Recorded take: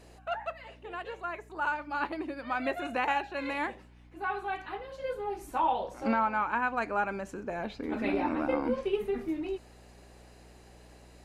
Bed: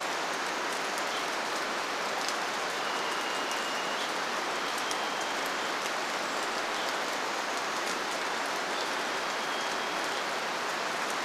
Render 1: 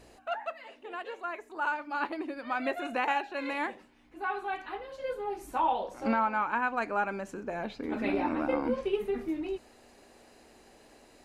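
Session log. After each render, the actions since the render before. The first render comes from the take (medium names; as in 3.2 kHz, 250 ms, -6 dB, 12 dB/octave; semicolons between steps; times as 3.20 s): de-hum 60 Hz, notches 3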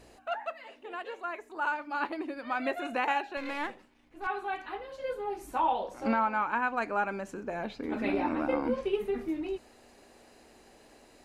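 3.37–4.27 s: partial rectifier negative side -7 dB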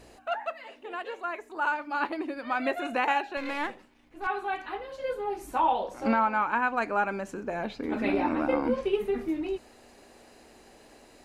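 trim +3 dB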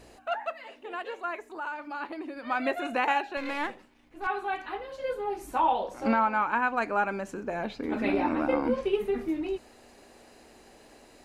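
1.54–2.46 s: compression 2:1, threshold -37 dBFS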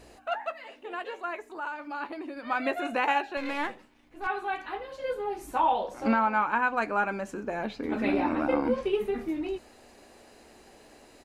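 doubling 14 ms -12.5 dB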